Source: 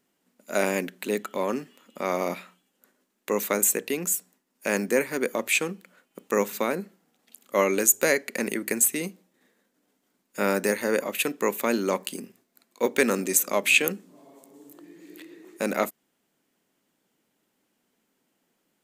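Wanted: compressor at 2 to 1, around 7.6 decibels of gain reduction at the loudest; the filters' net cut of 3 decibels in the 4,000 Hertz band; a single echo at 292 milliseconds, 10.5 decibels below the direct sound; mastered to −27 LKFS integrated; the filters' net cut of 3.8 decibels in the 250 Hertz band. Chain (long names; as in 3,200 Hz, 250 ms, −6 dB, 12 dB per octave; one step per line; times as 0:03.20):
parametric band 250 Hz −5 dB
parametric band 4,000 Hz −4 dB
downward compressor 2 to 1, threshold −30 dBFS
single-tap delay 292 ms −10.5 dB
level +5 dB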